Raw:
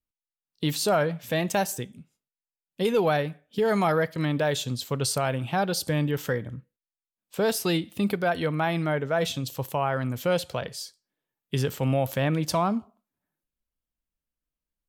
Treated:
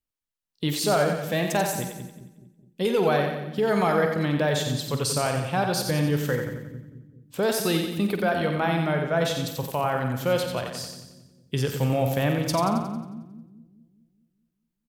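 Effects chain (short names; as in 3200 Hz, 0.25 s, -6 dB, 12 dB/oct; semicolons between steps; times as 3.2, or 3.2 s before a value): doubler 48 ms -11 dB; split-band echo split 310 Hz, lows 0.209 s, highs 90 ms, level -6 dB; 1.24–1.65 crackle 470/s -38 dBFS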